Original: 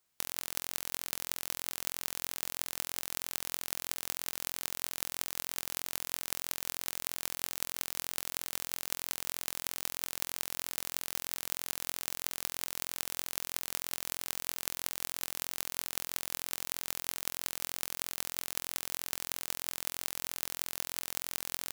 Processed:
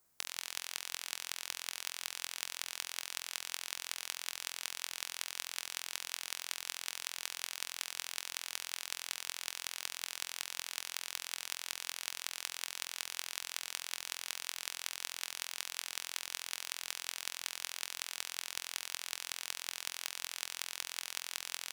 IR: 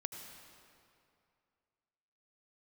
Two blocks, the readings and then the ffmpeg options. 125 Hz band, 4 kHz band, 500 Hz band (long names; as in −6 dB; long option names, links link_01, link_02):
below −15 dB, +1.0 dB, −8.5 dB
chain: -filter_complex "[0:a]equalizer=frequency=3100:width_type=o:width=1.4:gain=-9,aeval=exprs='(mod(6.68*val(0)+1,2)-1)/6.68':channel_layout=same,asplit=2[link_01][link_02];[1:a]atrim=start_sample=2205,asetrate=48510,aresample=44100[link_03];[link_02][link_03]afir=irnorm=-1:irlink=0,volume=-8.5dB[link_04];[link_01][link_04]amix=inputs=2:normalize=0,volume=4dB"